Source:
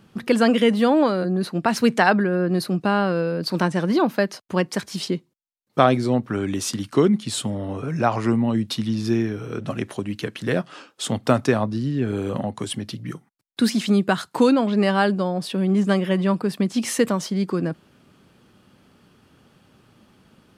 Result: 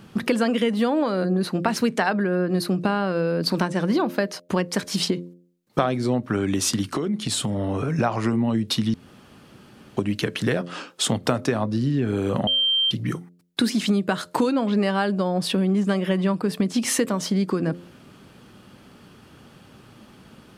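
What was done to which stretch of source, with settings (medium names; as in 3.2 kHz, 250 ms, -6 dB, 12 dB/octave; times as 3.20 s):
6.92–7.99 s: compression 12:1, threshold -27 dBFS
8.94–9.97 s: room tone
12.47–12.91 s: bleep 3.15 kHz -21.5 dBFS
whole clip: compression 5:1, threshold -26 dBFS; de-hum 87.45 Hz, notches 7; trim +7 dB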